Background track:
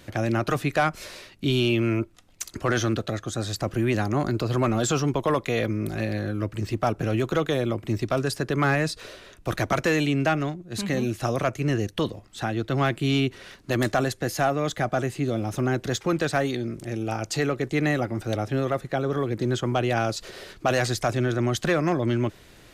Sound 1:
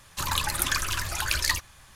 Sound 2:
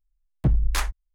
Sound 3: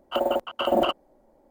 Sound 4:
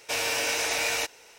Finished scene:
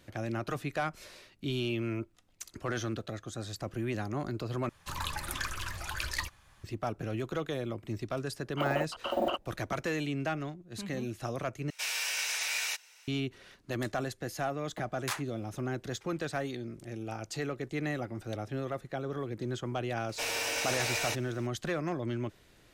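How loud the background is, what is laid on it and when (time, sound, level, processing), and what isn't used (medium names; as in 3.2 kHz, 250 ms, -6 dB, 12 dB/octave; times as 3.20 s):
background track -10.5 dB
4.69 s: replace with 1 -7 dB + treble shelf 4 kHz -7.5 dB
8.45 s: add 3 -8.5 dB
11.70 s: replace with 4 -4.5 dB + high-pass 1.4 kHz
14.33 s: add 2 -6.5 dB + high-pass 520 Hz
20.09 s: add 4 -5.5 dB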